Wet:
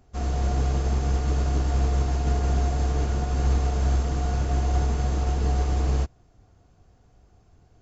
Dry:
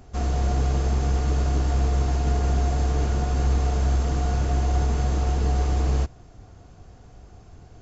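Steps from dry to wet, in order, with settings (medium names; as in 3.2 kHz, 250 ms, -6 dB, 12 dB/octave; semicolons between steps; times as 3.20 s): upward expansion 1.5:1, over -39 dBFS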